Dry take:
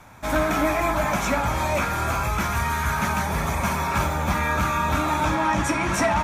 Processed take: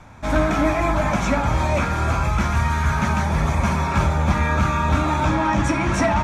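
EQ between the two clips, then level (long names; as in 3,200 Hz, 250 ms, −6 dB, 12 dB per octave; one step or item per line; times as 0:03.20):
low-pass filter 7,300 Hz 12 dB per octave
low-shelf EQ 330 Hz +8.5 dB
mains-hum notches 60/120/180/240/300/360/420 Hz
0.0 dB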